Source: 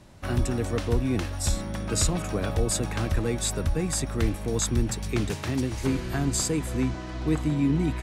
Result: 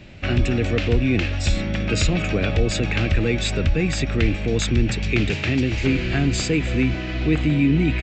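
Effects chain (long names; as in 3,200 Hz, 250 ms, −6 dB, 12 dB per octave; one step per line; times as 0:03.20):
graphic EQ with 15 bands 1,000 Hz −11 dB, 2,500 Hz +11 dB, 6,300 Hz −9 dB
in parallel at +1 dB: brickwall limiter −22.5 dBFS, peak gain reduction 10 dB
on the sum: downsampling to 16,000 Hz
level +2 dB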